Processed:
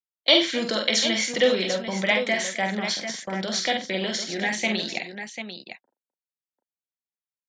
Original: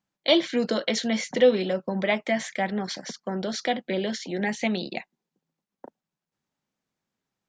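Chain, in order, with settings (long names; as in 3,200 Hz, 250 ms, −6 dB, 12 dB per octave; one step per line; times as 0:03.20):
noise gate −36 dBFS, range −28 dB
tilt shelving filter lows −5.5 dB, about 1,200 Hz
on a send: multi-tap delay 47/89/257/744 ms −5/−16.5/−19.5/−9 dB
on the sum: level +1.5 dB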